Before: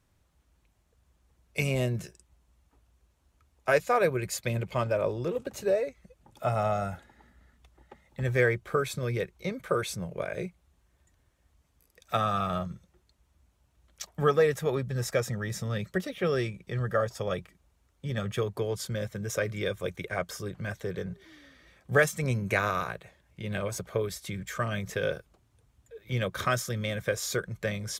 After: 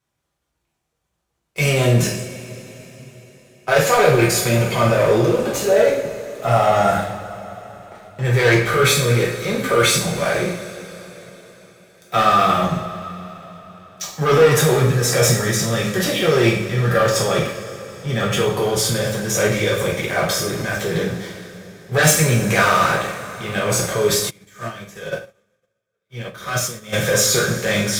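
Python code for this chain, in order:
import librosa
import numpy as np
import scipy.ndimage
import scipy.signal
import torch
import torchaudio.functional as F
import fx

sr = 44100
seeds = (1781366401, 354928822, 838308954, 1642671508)

y = fx.highpass(x, sr, hz=200.0, slope=6)
y = fx.transient(y, sr, attack_db=-4, sustain_db=9)
y = fx.leveller(y, sr, passes=3)
y = fx.rev_double_slope(y, sr, seeds[0], early_s=0.54, late_s=4.3, knee_db=-18, drr_db=-4.5)
y = fx.upward_expand(y, sr, threshold_db=-35.0, expansion=2.5, at=(24.29, 26.92), fade=0.02)
y = y * 10.0 ** (-1.5 / 20.0)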